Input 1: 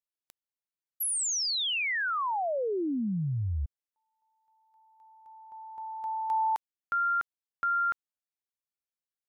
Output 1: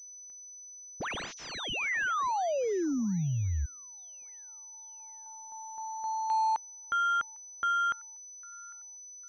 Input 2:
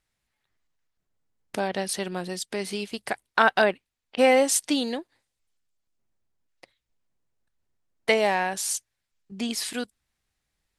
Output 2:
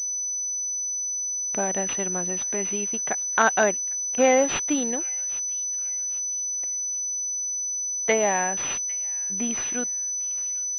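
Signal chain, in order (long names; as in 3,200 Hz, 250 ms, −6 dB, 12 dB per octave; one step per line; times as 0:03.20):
delay with a high-pass on its return 802 ms, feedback 36%, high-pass 1,900 Hz, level −18.5 dB
switching amplifier with a slow clock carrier 6,000 Hz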